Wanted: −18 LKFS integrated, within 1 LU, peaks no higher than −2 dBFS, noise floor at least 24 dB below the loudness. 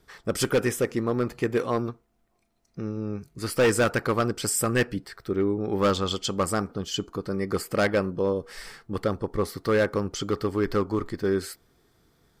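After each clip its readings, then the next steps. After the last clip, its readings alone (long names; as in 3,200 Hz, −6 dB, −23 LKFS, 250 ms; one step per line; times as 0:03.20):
share of clipped samples 1.0%; peaks flattened at −16.0 dBFS; integrated loudness −27.0 LKFS; sample peak −16.0 dBFS; target loudness −18.0 LKFS
→ clipped peaks rebuilt −16 dBFS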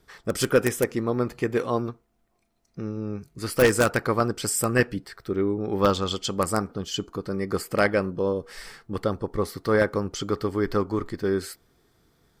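share of clipped samples 0.0%; integrated loudness −26.0 LKFS; sample peak −7.0 dBFS; target loudness −18.0 LKFS
→ level +8 dB
brickwall limiter −2 dBFS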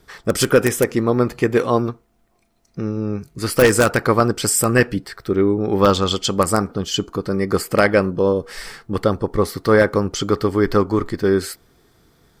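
integrated loudness −18.5 LKFS; sample peak −2.0 dBFS; background noise floor −62 dBFS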